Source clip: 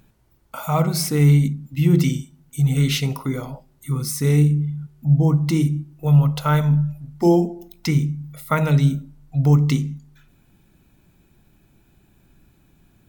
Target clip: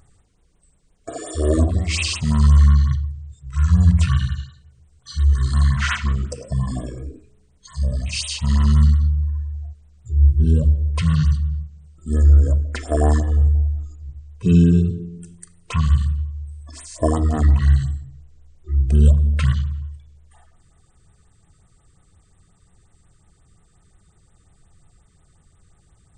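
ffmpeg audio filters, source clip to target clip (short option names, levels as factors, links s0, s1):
-af "bandreject=f=427.1:t=h:w=4,bandreject=f=854.2:t=h:w=4,bandreject=f=1281.3:t=h:w=4,asetrate=22050,aresample=44100,afftfilt=real='re*(1-between(b*sr/1024,670*pow(6000/670,0.5+0.5*sin(2*PI*5.6*pts/sr))/1.41,670*pow(6000/670,0.5+0.5*sin(2*PI*5.6*pts/sr))*1.41))':imag='im*(1-between(b*sr/1024,670*pow(6000/670,0.5+0.5*sin(2*PI*5.6*pts/sr))/1.41,670*pow(6000/670,0.5+0.5*sin(2*PI*5.6*pts/sr))*1.41))':win_size=1024:overlap=0.75,volume=1.19"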